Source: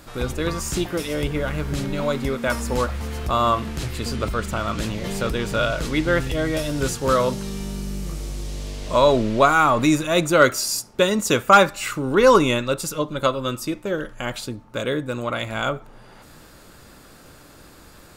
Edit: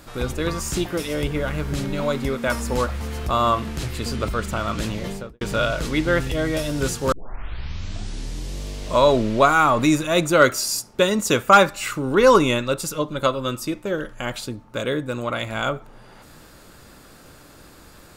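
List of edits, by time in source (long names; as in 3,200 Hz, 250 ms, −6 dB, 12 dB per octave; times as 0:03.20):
0:04.98–0:05.41: fade out and dull
0:07.12: tape start 1.47 s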